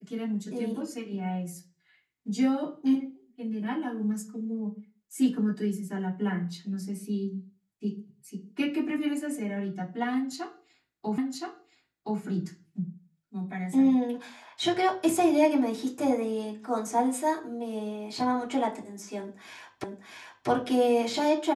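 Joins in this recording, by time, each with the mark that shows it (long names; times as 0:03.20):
0:11.18: the same again, the last 1.02 s
0:19.84: the same again, the last 0.64 s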